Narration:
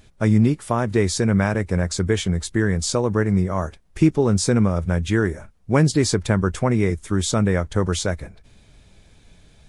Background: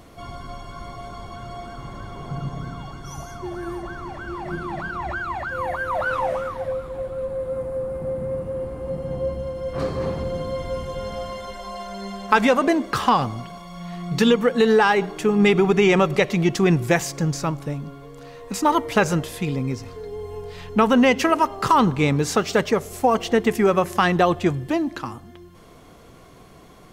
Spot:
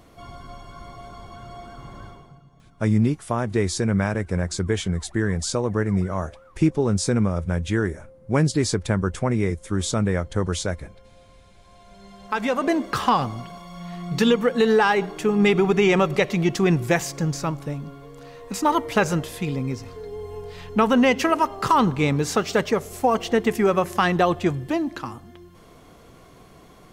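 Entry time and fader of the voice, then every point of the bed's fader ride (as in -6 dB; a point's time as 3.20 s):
2.60 s, -3.0 dB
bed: 2.07 s -4.5 dB
2.44 s -23.5 dB
11.55 s -23.5 dB
12.75 s -1.5 dB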